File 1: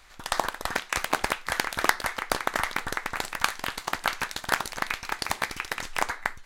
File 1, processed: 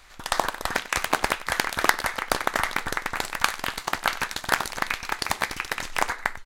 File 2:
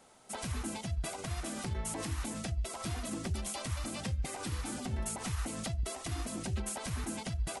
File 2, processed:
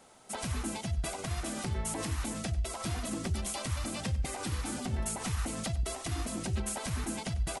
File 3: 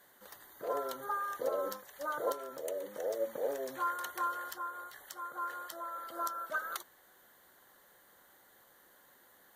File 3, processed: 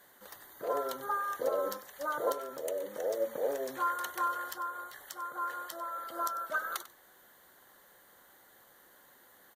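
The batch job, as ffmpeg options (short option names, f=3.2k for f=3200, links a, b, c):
-af "aecho=1:1:96:0.15,volume=2.5dB"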